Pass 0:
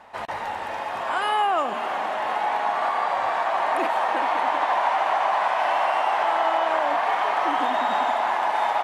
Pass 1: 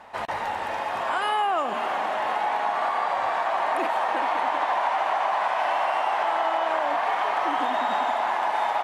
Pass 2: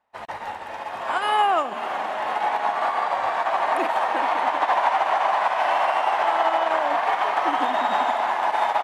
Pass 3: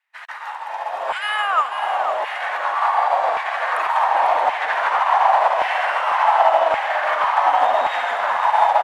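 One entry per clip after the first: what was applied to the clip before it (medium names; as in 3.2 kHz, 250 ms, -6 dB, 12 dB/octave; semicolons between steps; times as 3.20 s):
compression 2:1, threshold -25 dBFS, peak gain reduction 4.5 dB; trim +1.5 dB
upward expansion 2.5:1, over -44 dBFS; trim +6 dB
LFO high-pass saw down 0.89 Hz 490–2200 Hz; frequency-shifting echo 497 ms, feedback 45%, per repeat -41 Hz, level -9 dB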